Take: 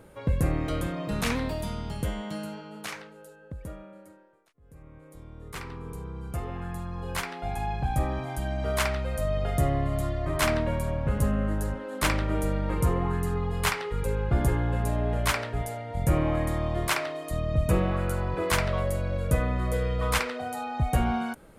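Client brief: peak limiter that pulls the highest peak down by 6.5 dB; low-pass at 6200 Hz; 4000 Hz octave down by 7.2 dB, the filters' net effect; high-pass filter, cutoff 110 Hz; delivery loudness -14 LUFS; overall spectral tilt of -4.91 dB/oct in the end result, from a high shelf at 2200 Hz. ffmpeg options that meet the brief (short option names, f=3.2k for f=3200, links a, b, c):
-af "highpass=110,lowpass=6.2k,highshelf=f=2.2k:g=-3.5,equalizer=f=4k:t=o:g=-6,volume=18.5dB,alimiter=limit=-2.5dB:level=0:latency=1"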